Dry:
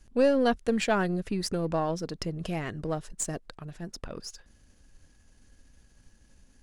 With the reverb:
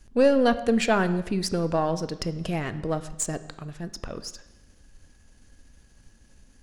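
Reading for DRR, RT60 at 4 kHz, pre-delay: 12.0 dB, 0.95 s, 8 ms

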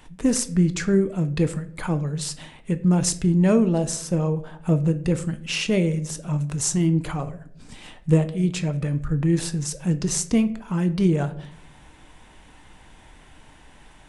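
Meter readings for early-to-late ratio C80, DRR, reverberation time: 19.0 dB, 9.5 dB, 0.65 s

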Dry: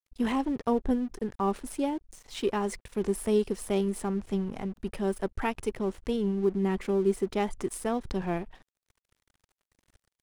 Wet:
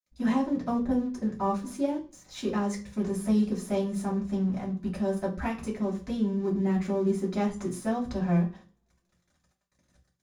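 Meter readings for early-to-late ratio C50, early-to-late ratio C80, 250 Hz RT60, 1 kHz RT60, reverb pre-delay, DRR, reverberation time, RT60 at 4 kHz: 11.5 dB, 17.0 dB, 0.45 s, 0.40 s, 3 ms, −6.0 dB, 0.40 s, 0.40 s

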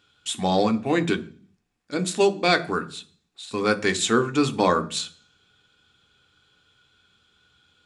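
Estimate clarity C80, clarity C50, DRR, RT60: 22.5 dB, 18.0 dB, 7.0 dB, 0.45 s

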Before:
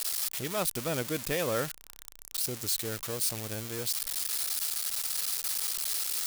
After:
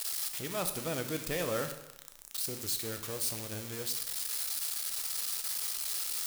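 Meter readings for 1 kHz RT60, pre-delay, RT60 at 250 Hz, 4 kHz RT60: 0.85 s, 7 ms, 0.90 s, 0.80 s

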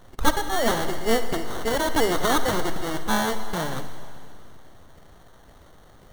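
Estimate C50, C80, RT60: 9.0 dB, 10.5 dB, 2.4 s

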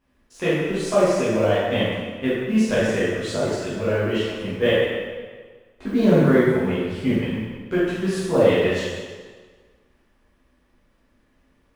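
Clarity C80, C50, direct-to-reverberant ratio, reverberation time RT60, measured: 0.0 dB, −2.0 dB, −11.5 dB, 1.6 s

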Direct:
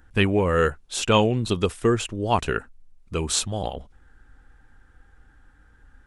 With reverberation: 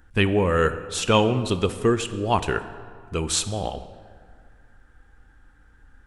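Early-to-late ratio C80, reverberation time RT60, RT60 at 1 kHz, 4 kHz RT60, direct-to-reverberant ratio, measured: 13.5 dB, 1.9 s, 1.9 s, 1.2 s, 11.0 dB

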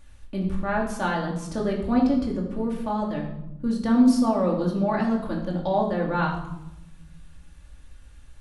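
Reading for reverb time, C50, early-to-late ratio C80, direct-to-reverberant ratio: 0.90 s, 5.5 dB, 8.5 dB, −2.5 dB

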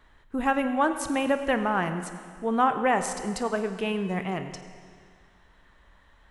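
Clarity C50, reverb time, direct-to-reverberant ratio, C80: 9.0 dB, 2.0 s, 8.0 dB, 10.0 dB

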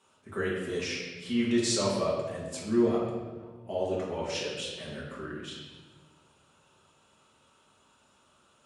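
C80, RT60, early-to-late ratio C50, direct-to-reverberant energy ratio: 3.0 dB, 1.4 s, 1.0 dB, −6.5 dB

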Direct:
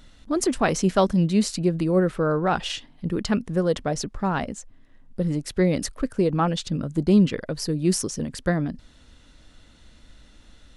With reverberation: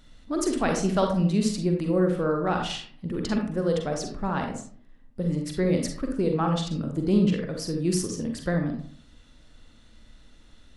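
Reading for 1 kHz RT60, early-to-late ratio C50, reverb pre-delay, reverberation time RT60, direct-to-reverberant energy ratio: 0.50 s, 4.5 dB, 39 ms, 0.55 s, 2.5 dB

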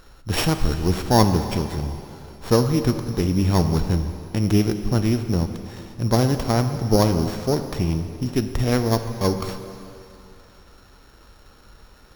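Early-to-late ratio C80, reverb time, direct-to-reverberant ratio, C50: 9.5 dB, 2.8 s, 7.5 dB, 8.5 dB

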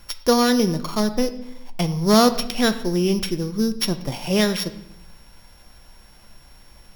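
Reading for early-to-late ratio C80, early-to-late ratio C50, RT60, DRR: 15.5 dB, 13.5 dB, 0.80 s, 9.5 dB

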